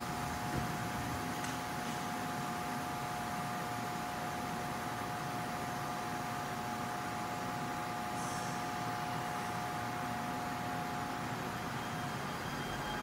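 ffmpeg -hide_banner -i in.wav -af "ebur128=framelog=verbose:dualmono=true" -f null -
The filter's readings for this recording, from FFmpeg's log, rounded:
Integrated loudness:
  I:         -35.6 LUFS
  Threshold: -45.5 LUFS
Loudness range:
  LRA:         0.6 LU
  Threshold: -55.6 LUFS
  LRA low:   -35.8 LUFS
  LRA high:  -35.2 LUFS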